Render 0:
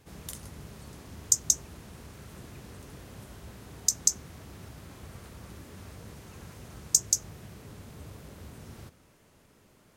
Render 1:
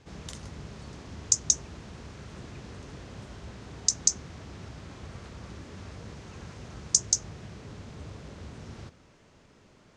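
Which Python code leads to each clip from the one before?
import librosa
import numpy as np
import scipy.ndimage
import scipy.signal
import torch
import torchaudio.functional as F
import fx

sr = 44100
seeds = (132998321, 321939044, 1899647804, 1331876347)

y = scipy.signal.sosfilt(scipy.signal.butter(4, 6800.0, 'lowpass', fs=sr, output='sos'), x)
y = F.gain(torch.from_numpy(y), 3.0).numpy()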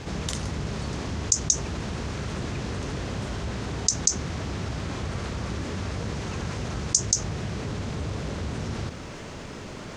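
y = fx.env_flatten(x, sr, amount_pct=50)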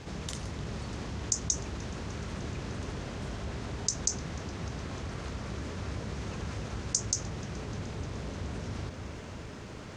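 y = fx.echo_wet_lowpass(x, sr, ms=302, feedback_pct=73, hz=2600.0, wet_db=-8)
y = F.gain(torch.from_numpy(y), -7.5).numpy()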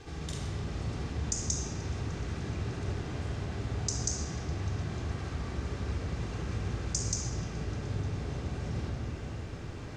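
y = fx.room_shoebox(x, sr, seeds[0], volume_m3=3700.0, walls='mixed', distance_m=3.7)
y = F.gain(torch.from_numpy(y), -6.0).numpy()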